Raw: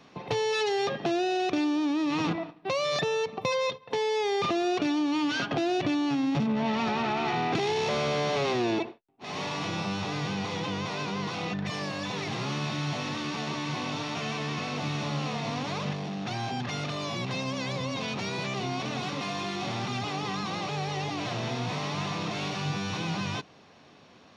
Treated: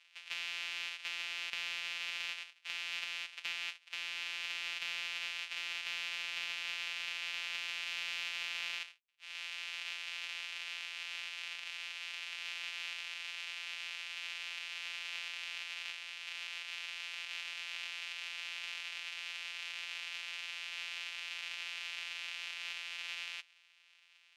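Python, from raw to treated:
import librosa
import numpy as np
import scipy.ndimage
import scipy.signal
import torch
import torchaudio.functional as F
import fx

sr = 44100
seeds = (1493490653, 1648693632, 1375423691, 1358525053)

y = np.r_[np.sort(x[:len(x) // 256 * 256].reshape(-1, 256), axis=1).ravel(), x[len(x) // 256 * 256:]]
y = fx.ladder_bandpass(y, sr, hz=3000.0, resonance_pct=55)
y = fx.cheby_harmonics(y, sr, harmonics=(2, 4, 5), levels_db=(-18, -32, -32), full_scale_db=-27.5)
y = y * librosa.db_to_amplitude(6.5)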